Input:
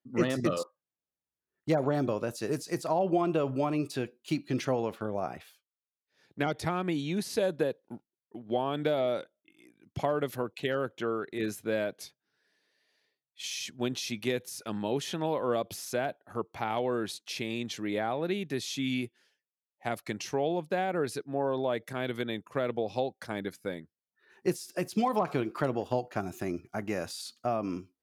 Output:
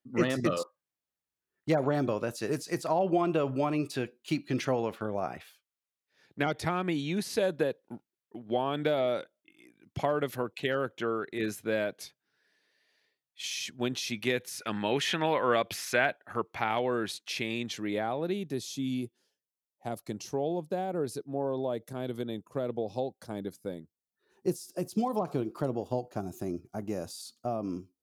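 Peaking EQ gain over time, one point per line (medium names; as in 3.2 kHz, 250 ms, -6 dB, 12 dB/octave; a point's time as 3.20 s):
peaking EQ 2 kHz 1.6 oct
14.10 s +2.5 dB
14.94 s +14.5 dB
15.99 s +14.5 dB
16.86 s +4.5 dB
17.45 s +4.5 dB
18.04 s -2 dB
18.78 s -14 dB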